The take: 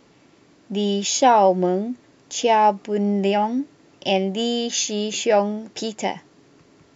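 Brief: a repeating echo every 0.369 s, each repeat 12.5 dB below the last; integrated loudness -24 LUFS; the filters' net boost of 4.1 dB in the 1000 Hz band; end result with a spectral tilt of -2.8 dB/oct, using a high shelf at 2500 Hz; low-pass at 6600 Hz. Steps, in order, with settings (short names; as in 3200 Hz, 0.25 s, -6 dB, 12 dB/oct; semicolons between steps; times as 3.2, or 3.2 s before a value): LPF 6600 Hz; bell 1000 Hz +4 dB; high shelf 2500 Hz +9 dB; feedback echo 0.369 s, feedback 24%, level -12.5 dB; gain -6.5 dB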